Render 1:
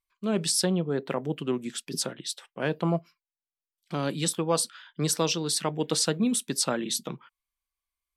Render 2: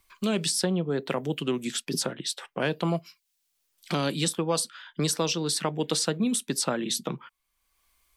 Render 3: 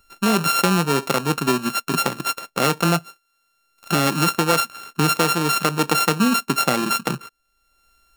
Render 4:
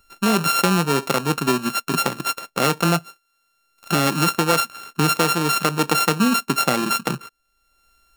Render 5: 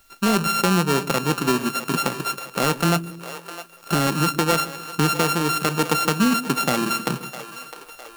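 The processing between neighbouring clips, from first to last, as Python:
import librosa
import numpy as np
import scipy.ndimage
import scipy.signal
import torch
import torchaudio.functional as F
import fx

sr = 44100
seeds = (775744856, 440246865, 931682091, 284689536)

y1 = fx.band_squash(x, sr, depth_pct=70)
y2 = np.r_[np.sort(y1[:len(y1) // 32 * 32].reshape(-1, 32), axis=1).ravel(), y1[len(y1) // 32 * 32:]]
y2 = y2 * librosa.db_to_amplitude(8.0)
y3 = y2
y4 = fx.self_delay(y3, sr, depth_ms=0.22)
y4 = fx.quant_dither(y4, sr, seeds[0], bits=10, dither='triangular')
y4 = fx.echo_split(y4, sr, split_hz=410.0, low_ms=135, high_ms=657, feedback_pct=52, wet_db=-13)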